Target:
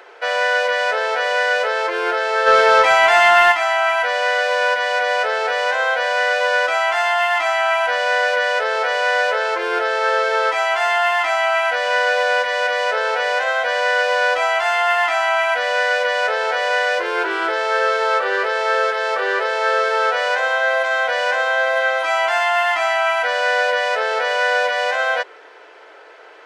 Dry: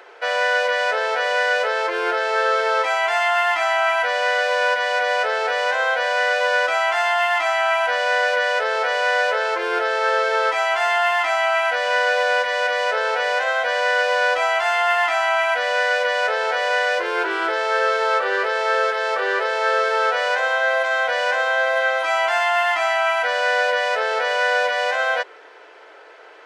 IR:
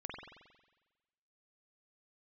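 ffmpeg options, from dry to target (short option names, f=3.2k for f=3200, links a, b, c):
-filter_complex "[0:a]asplit=3[a][b][c];[a]afade=t=out:st=2.46:d=0.02[d];[b]acontrast=63,afade=t=in:st=2.46:d=0.02,afade=t=out:st=3.51:d=0.02[e];[c]afade=t=in:st=3.51:d=0.02[f];[d][e][f]amix=inputs=3:normalize=0,volume=1.5dB"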